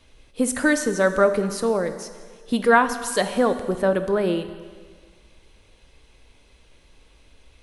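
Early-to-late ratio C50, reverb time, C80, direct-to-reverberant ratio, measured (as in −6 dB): 10.5 dB, 1.7 s, 12.0 dB, 9.0 dB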